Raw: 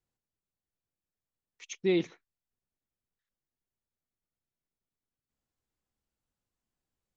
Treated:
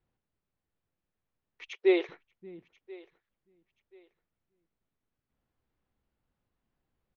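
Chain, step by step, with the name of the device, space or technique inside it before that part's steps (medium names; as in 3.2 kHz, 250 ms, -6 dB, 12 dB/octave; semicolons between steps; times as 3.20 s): shout across a valley (distance through air 330 m; echo from a far wall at 100 m, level -28 dB); 1.68–2.09 s: elliptic high-pass 390 Hz; feedback delay 1033 ms, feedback 27%, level -23 dB; trim +8.5 dB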